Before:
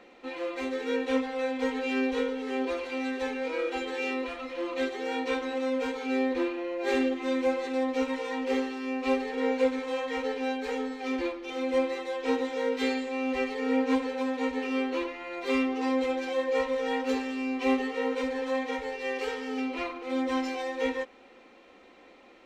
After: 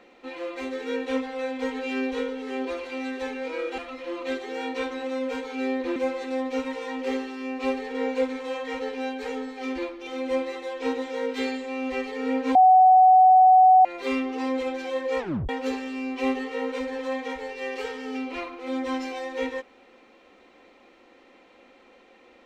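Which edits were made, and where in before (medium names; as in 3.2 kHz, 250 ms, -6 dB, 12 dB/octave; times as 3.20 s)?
3.78–4.29 s: delete
6.47–7.39 s: delete
13.98–15.28 s: bleep 747 Hz -11 dBFS
16.62 s: tape stop 0.30 s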